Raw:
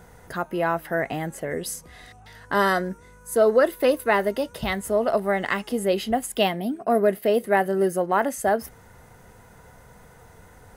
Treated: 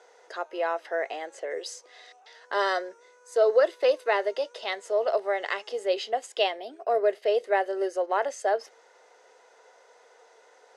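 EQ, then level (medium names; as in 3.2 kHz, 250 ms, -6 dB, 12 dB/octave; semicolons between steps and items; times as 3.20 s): steep high-pass 430 Hz 36 dB/octave; low-pass 6.1 kHz 24 dB/octave; peaking EQ 1.3 kHz -8.5 dB 2.5 oct; +2.5 dB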